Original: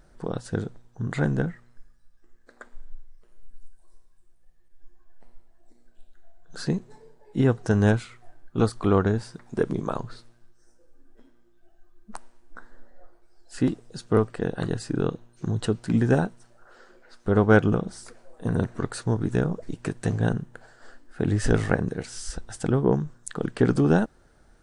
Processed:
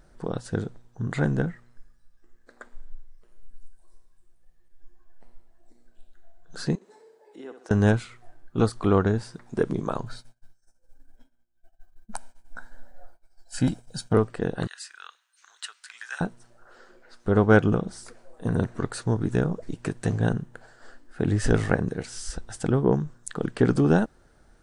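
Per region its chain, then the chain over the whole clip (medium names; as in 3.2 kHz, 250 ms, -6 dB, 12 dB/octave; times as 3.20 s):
6.75–7.71 s: high-pass 310 Hz 24 dB/octave + compression 2:1, threshold -51 dBFS + flutter echo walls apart 11.1 m, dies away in 0.45 s
10.06–14.14 s: expander -45 dBFS + treble shelf 6 kHz +8 dB + comb 1.3 ms, depth 70%
14.67–16.21 s: high-pass 1.4 kHz 24 dB/octave + short-mantissa float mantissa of 8-bit
whole clip: none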